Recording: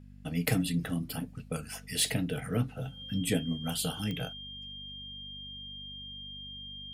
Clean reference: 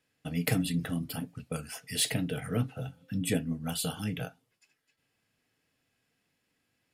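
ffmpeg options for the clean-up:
ffmpeg -i in.wav -af "adeclick=threshold=4,bandreject=frequency=49:width_type=h:width=4,bandreject=frequency=98:width_type=h:width=4,bandreject=frequency=147:width_type=h:width=4,bandreject=frequency=196:width_type=h:width=4,bandreject=frequency=245:width_type=h:width=4,bandreject=frequency=3200:width=30,asetnsamples=nb_out_samples=441:pad=0,asendcmd='4.33 volume volume 10.5dB',volume=0dB" out.wav

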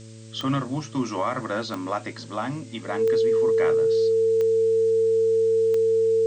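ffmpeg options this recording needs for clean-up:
ffmpeg -i in.wav -af "adeclick=threshold=4,bandreject=frequency=111.2:width_type=h:width=4,bandreject=frequency=222.4:width_type=h:width=4,bandreject=frequency=333.6:width_type=h:width=4,bandreject=frequency=444.8:width_type=h:width=4,bandreject=frequency=556:width_type=h:width=4,bandreject=frequency=450:width=30,afftdn=noise_reduction=30:noise_floor=-40" out.wav

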